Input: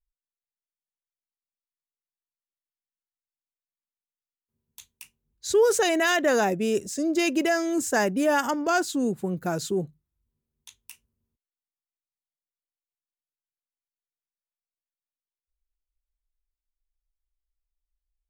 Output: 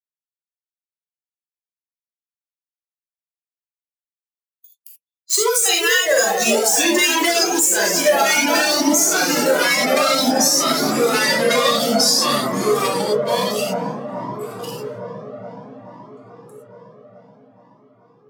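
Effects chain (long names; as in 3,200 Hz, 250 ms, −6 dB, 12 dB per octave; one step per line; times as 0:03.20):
spectral dynamics exaggerated over time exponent 2
source passing by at 0:07.35, 10 m/s, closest 2.4 metres
leveller curve on the samples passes 3
mains-hum notches 60/120/180/240/300/360/420/480 Hz
convolution reverb, pre-delay 3 ms, DRR −2.5 dB
delay with pitch and tempo change per echo 420 ms, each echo −2 semitones, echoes 3
high-pass filter 49 Hz
spectral tilt +4 dB per octave
delay with a low-pass on its return 428 ms, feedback 72%, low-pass 710 Hz, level −4.5 dB
downward compressor 16 to 1, threshold −28 dBFS, peak gain reduction 18 dB
boost into a limiter +21 dB
flanger whose copies keep moving one way rising 0.56 Hz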